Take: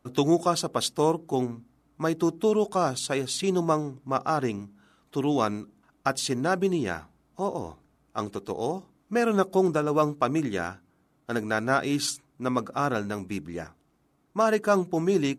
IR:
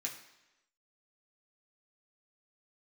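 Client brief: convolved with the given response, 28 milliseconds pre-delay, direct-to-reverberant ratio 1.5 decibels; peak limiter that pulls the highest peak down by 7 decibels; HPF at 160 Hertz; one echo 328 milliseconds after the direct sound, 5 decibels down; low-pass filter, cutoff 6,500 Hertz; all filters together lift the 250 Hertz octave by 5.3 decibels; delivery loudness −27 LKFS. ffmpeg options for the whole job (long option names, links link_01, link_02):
-filter_complex "[0:a]highpass=160,lowpass=6500,equalizer=frequency=250:width_type=o:gain=8,alimiter=limit=-14dB:level=0:latency=1,aecho=1:1:328:0.562,asplit=2[link_01][link_02];[1:a]atrim=start_sample=2205,adelay=28[link_03];[link_02][link_03]afir=irnorm=-1:irlink=0,volume=-1.5dB[link_04];[link_01][link_04]amix=inputs=2:normalize=0,volume=-3.5dB"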